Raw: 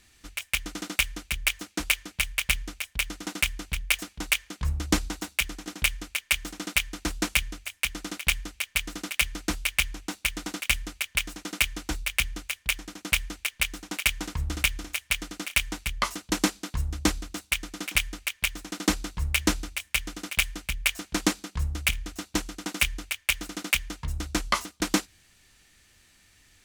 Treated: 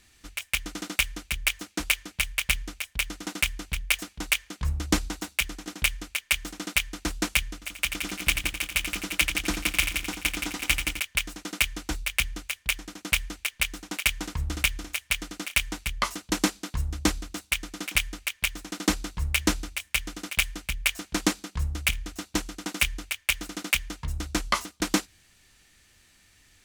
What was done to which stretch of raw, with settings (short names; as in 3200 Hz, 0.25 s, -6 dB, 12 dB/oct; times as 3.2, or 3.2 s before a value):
7.53–11 multi-head echo 86 ms, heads first and second, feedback 43%, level -8 dB